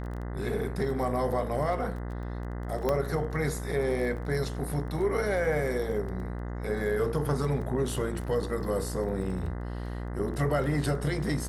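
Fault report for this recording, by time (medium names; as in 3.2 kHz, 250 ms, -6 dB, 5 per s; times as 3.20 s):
buzz 60 Hz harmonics 34 -35 dBFS
crackle 14 per s -37 dBFS
2.89 s: pop -14 dBFS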